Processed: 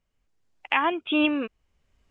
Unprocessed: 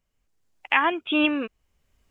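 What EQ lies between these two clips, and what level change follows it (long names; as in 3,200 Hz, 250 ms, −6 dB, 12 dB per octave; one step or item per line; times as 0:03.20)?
dynamic equaliser 1,700 Hz, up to −5 dB, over −35 dBFS, Q 1.7
high-frequency loss of the air 54 metres
0.0 dB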